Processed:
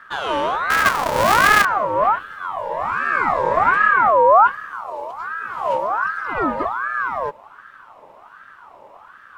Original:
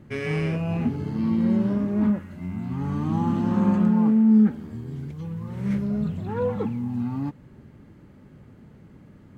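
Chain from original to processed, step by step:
0:00.70–0:01.65: each half-wave held at its own peak
ring modulator whose carrier an LFO sweeps 1,100 Hz, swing 35%, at 1.3 Hz
level +7 dB

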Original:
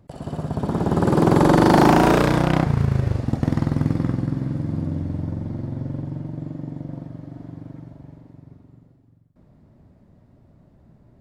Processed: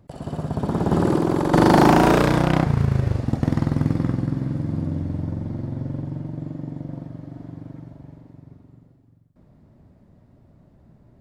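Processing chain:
0:00.92–0:01.54: compressor whose output falls as the input rises −20 dBFS, ratio −1

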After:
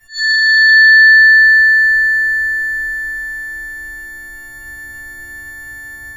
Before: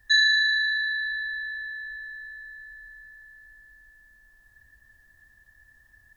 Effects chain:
every partial snapped to a pitch grid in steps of 4 semitones
parametric band 370 Hz +12 dB 0.3 octaves
downward compressor 5 to 1, threshold −26 dBFS, peak gain reduction 10 dB
dynamic equaliser 500 Hz, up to +7 dB, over −57 dBFS, Q 1.5
automatic gain control gain up to 6.5 dB
convolution reverb RT60 2.4 s, pre-delay 4 ms, DRR −18 dB
level that may rise only so fast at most 210 dB per second
level −3 dB

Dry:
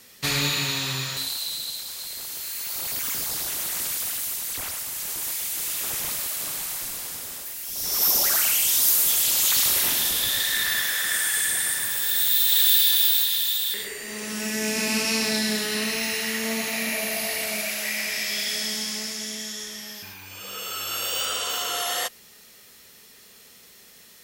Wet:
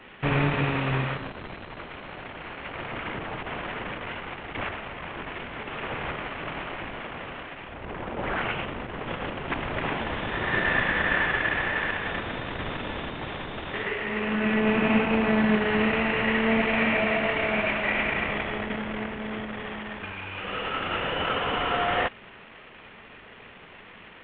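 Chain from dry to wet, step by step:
variable-slope delta modulation 16 kbit/s
level +7.5 dB

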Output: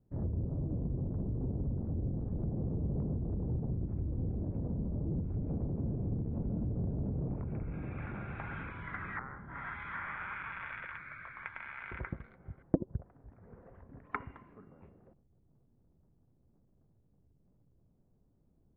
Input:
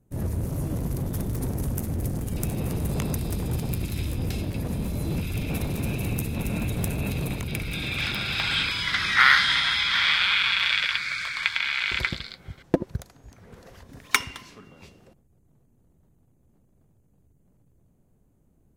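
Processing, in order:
Bessel low-pass filter 1,100 Hz, order 6
treble cut that deepens with the level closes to 520 Hz, closed at −24.5 dBFS
level −6.5 dB

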